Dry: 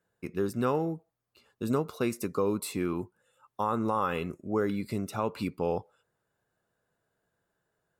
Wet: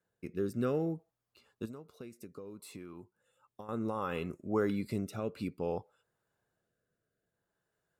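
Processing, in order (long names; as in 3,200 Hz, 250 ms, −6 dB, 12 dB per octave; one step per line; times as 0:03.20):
rotating-speaker cabinet horn 0.6 Hz
0:01.65–0:03.69: downward compressor 5 to 1, threshold −44 dBFS, peak gain reduction 16.5 dB
level −2 dB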